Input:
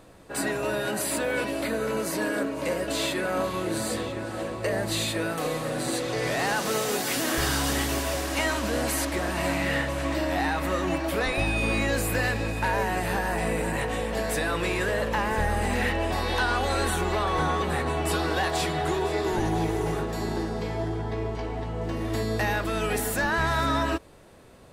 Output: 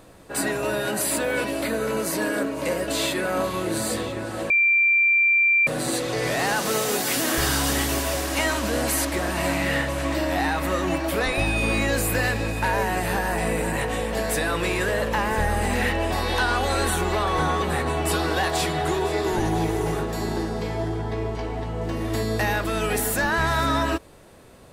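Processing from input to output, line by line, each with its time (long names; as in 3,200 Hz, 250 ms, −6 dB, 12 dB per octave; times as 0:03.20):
0:04.50–0:05.67: beep over 2,360 Hz −18 dBFS
whole clip: high-shelf EQ 8,400 Hz +4.5 dB; level +2.5 dB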